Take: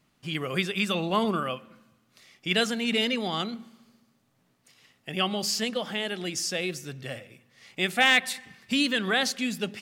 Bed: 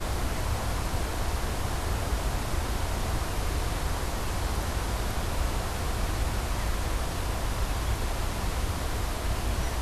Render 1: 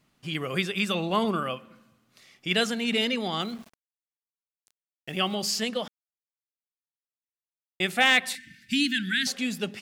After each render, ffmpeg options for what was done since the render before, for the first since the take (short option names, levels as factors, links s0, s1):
-filter_complex "[0:a]asettb=1/sr,asplit=3[s0][s1][s2];[s0]atrim=end=3.414[s3];[s1]atrim=start=3.41:end=5.35,asetpts=PTS-STARTPTS,afade=t=in:d=0.004:c=qsin,afade=t=out:st=1.936:d=0.004:c=qsin,aeval=exprs='val(0)*gte(abs(val(0)),0.00501)':c=same[s4];[s2]atrim=start=5.346[s5];[s3][s4]acrossfade=d=0.004:c1=hsin:c2=qsin[s6];[s6][s5]acrossfade=d=0.004:c1=qsin:c2=hsin,asettb=1/sr,asplit=3[s7][s8][s9];[s7]atrim=end=8.354[s10];[s8]atrim=start=8.35:end=9.27,asetpts=PTS-STARTPTS,afade=t=in:d=0.004:c=qsin,afade=t=out:st=0.916:d=0.004:c=qsin,asuperstop=centerf=700:order=20:qfactor=0.62[s11];[s9]atrim=start=9.266[s12];[s10][s11]acrossfade=d=0.004:c1=hsin:c2=qsin[s13];[s13][s12]acrossfade=d=0.004:c1=qsin:c2=hsin,asplit=3[s14][s15][s16];[s14]atrim=end=5.88,asetpts=PTS-STARTPTS,afade=t=out:st=5.876:d=0.004:c=hsin[s17];[s15]atrim=start=5.88:end=7.8,asetpts=PTS-STARTPTS,volume=0[s18];[s16]atrim=start=7.8,asetpts=PTS-STARTPTS,afade=t=in:d=0.004:c=hsin[s19];[s17][s18][s19]concat=n=3:v=0:a=1"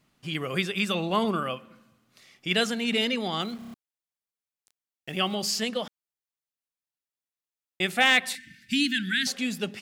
-filter_complex "[0:a]asplit=6[s0][s1][s2][s3][s4][s5];[s0]atrim=end=3.622[s6];[s1]atrim=start=3.588:end=3.622[s7];[s2]atrim=start=3.588:end=3.622[s8];[s3]atrim=start=3.588:end=3.622[s9];[s4]atrim=start=3.588:end=3.622[s10];[s5]atrim=start=3.738[s11];[s6][s7]acrossfade=d=0.004:c1=hsin:c2=hsin[s12];[s12][s8]acrossfade=d=0.004:c1=hsin:c2=hsin[s13];[s13][s9]acrossfade=d=0.004:c1=hsin:c2=hsin[s14];[s14][s10]acrossfade=d=0.004:c1=hsin:c2=hsin[s15];[s15][s11]acrossfade=d=0.004:c1=hsin:c2=hsin"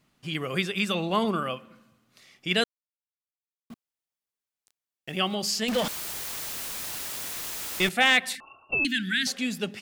-filter_complex "[0:a]asettb=1/sr,asplit=3[s0][s1][s2];[s0]atrim=end=5.684[s3];[s1]atrim=start=5.68:end=7.89,asetpts=PTS-STARTPTS,afade=t=in:d=0.004:c=qsin,afade=t=out:st=2.206:d=0.004:c=qsin,aeval=exprs='val(0)+0.5*0.0562*sgn(val(0))':c=same[s4];[s2]atrim=start=7.886[s5];[s3][s4]acrossfade=d=0.004:c1=hsin:c2=qsin[s6];[s6][s5]acrossfade=d=0.004:c1=qsin:c2=hsin,asettb=1/sr,asplit=3[s7][s8][s9];[s7]atrim=end=8.404[s10];[s8]atrim=start=8.4:end=8.85,asetpts=PTS-STARTPTS,afade=t=in:d=0.004:c=qsin,afade=t=out:st=0.446:d=0.004:c=qsin,lowpass=f=2500:t=q:w=0.5098,lowpass=f=2500:t=q:w=0.6013,lowpass=f=2500:t=q:w=0.9,lowpass=f=2500:t=q:w=2.563,afreqshift=-2900[s11];[s9]atrim=start=8.846[s12];[s10][s11]acrossfade=d=0.004:c1=hsin:c2=qsin[s13];[s13][s12]acrossfade=d=0.004:c1=qsin:c2=hsin,asplit=3[s14][s15][s16];[s14]atrim=end=2.64,asetpts=PTS-STARTPTS,afade=t=out:st=2.636:d=0.004:c=hsin[s17];[s15]atrim=start=2.64:end=3.7,asetpts=PTS-STARTPTS,volume=0[s18];[s16]atrim=start=3.7,asetpts=PTS-STARTPTS,afade=t=in:d=0.004:c=hsin[s19];[s17][s18][s19]concat=n=3:v=0:a=1"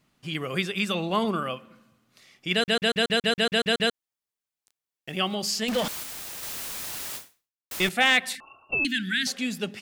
-filter_complex "[0:a]asettb=1/sr,asplit=3[s0][s1][s2];[s0]atrim=end=6.034[s3];[s1]atrim=start=6.03:end=6.43,asetpts=PTS-STARTPTS,afade=t=in:d=0.004:c=qsin,afade=t=out:st=0.396:d=0.004:c=qsin,aeval=exprs='val(0)*sin(2*PI*1700*n/s)':c=same[s4];[s2]atrim=start=6.426[s5];[s3][s4]acrossfade=d=0.004:c1=hsin:c2=qsin[s6];[s6][s5]acrossfade=d=0.004:c1=qsin:c2=hsin,asplit=12[s7][s8][s9][s10][s11][s12][s13][s14][s15][s16][s17][s18];[s7]atrim=end=2.682[s19];[s8]atrim=start=2.538:end=2.682[s20];[s9]atrim=start=2.538:end=2.682[s21];[s10]atrim=start=2.538:end=2.682[s22];[s11]atrim=start=2.538:end=2.682[s23];[s12]atrim=start=2.538:end=2.682[s24];[s13]atrim=start=2.538:end=2.682[s25];[s14]atrim=start=2.538:end=2.682[s26];[s15]atrim=start=2.538:end=2.682[s27];[s16]atrim=start=2.538:end=2.682[s28];[s17]atrim=start=3.938:end=7.71,asetpts=PTS-STARTPTS,afade=t=out:st=3.222:d=0.55:c=exp[s29];[s18]atrim=start=7.71,asetpts=PTS-STARTPTS,afade=t=in:d=0.004:c=hsin[s30];[s19][s20]acrossfade=d=0.004:c1=hsin:c2=hsin[s31];[s31][s21]acrossfade=d=0.004:c1=hsin:c2=hsin[s32];[s32][s22]acrossfade=d=0.004:c1=hsin:c2=hsin[s33];[s33][s23]acrossfade=d=0.004:c1=hsin:c2=hsin[s34];[s34][s24]acrossfade=d=0.004:c1=hsin:c2=hsin[s35];[s35][s25]acrossfade=d=0.004:c1=hsin:c2=hsin[s36];[s36][s26]acrossfade=d=0.004:c1=hsin:c2=hsin[s37];[s37][s27]acrossfade=d=0.004:c1=hsin:c2=hsin[s38];[s38][s28]acrossfade=d=0.004:c1=hsin:c2=hsin[s39];[s29][s30]concat=n=2:v=0:a=1[s40];[s39][s40]acrossfade=d=0.004:c1=hsin:c2=hsin"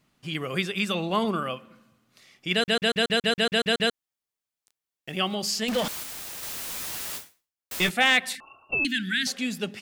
-filter_complex "[0:a]asettb=1/sr,asplit=3[s0][s1][s2];[s0]atrim=end=6.674[s3];[s1]atrim=start=6.67:end=7.91,asetpts=PTS-STARTPTS,afade=t=in:d=0.004:c=qsin,afade=t=out:st=1.236:d=0.004:c=qsin,asplit=2[s4][s5];[s5]adelay=12,volume=0.501[s6];[s4][s6]amix=inputs=2:normalize=0,atrim=end_sample=54684[s7];[s2]atrim=start=7.906[s8];[s3][s7]acrossfade=d=0.004:c1=hsin:c2=qsin[s9];[s9][s8]acrossfade=d=0.004:c1=qsin:c2=hsin"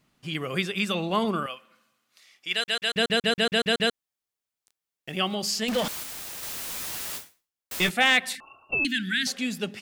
-filter_complex "[0:a]asettb=1/sr,asplit=3[s0][s1][s2];[s0]atrim=end=1.464[s3];[s1]atrim=start=1.46:end=2.93,asetpts=PTS-STARTPTS,afade=t=in:d=0.004:c=qsin,afade=t=out:st=1.466:d=0.004:c=qsin,highpass=f=1400:p=1[s4];[s2]atrim=start=2.926[s5];[s3][s4]acrossfade=d=0.004:c1=hsin:c2=qsin[s6];[s6][s5]acrossfade=d=0.004:c1=qsin:c2=hsin"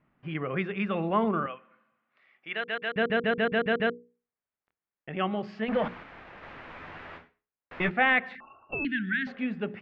-af "lowpass=f=2100:w=0.5412,lowpass=f=2100:w=1.3066,bandreject=f=60:t=h:w=6,bandreject=f=120:t=h:w=6,bandreject=f=180:t=h:w=6,bandreject=f=240:t=h:w=6,bandreject=f=300:t=h:w=6,bandreject=f=360:t=h:w=6,bandreject=f=420:t=h:w=6,bandreject=f=480:t=h:w=6"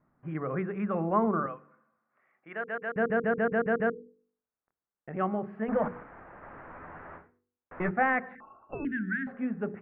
-af "lowpass=f=1600:w=0.5412,lowpass=f=1600:w=1.3066,bandreject=f=48.91:t=h:w=4,bandreject=f=97.82:t=h:w=4,bandreject=f=146.73:t=h:w=4,bandreject=f=195.64:t=h:w=4,bandreject=f=244.55:t=h:w=4,bandreject=f=293.46:t=h:w=4,bandreject=f=342.37:t=h:w=4,bandreject=f=391.28:t=h:w=4,bandreject=f=440.19:t=h:w=4,bandreject=f=489.1:t=h:w=4"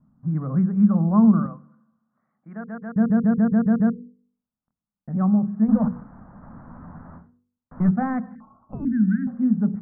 -af "lowpass=f=1300:w=0.5412,lowpass=f=1300:w=1.3066,lowshelf=f=290:t=q:w=3:g=9.5"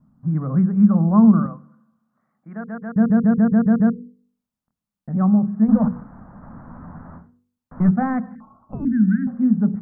-af "volume=1.41"